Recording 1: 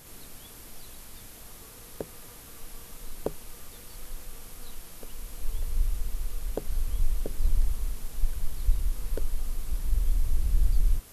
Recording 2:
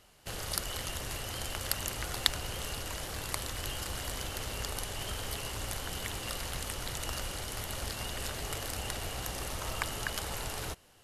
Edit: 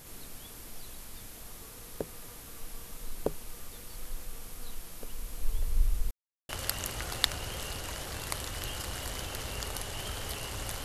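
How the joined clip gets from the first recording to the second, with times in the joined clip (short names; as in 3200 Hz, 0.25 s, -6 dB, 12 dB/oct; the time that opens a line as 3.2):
recording 1
6.11–6.49 mute
6.49 switch to recording 2 from 1.51 s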